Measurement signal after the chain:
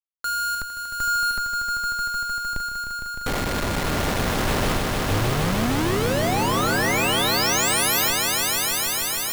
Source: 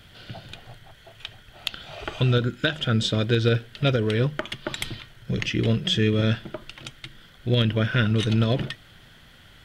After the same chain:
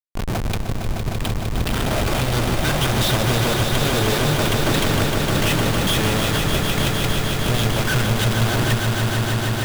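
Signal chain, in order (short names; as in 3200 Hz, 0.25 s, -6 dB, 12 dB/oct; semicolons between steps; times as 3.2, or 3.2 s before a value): Schmitt trigger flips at -38.5 dBFS; swelling echo 0.153 s, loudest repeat 5, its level -7 dB; gain +3.5 dB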